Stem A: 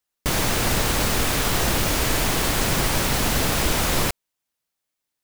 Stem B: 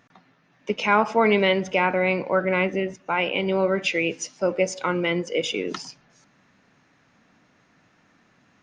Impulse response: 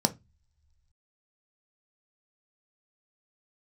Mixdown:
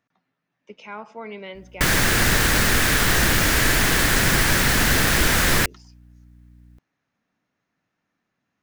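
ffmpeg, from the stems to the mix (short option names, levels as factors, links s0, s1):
-filter_complex "[0:a]equalizer=f=1700:w=1.6:g=13.5,aeval=exprs='val(0)+0.00316*(sin(2*PI*60*n/s)+sin(2*PI*2*60*n/s)/2+sin(2*PI*3*60*n/s)/3+sin(2*PI*4*60*n/s)/4+sin(2*PI*5*60*n/s)/5)':c=same,adelay=1550,volume=1.33[s0];[1:a]volume=0.141[s1];[s0][s1]amix=inputs=2:normalize=0,acrossover=split=450|3000[s2][s3][s4];[s3]acompressor=threshold=0.0447:ratio=2[s5];[s2][s5][s4]amix=inputs=3:normalize=0"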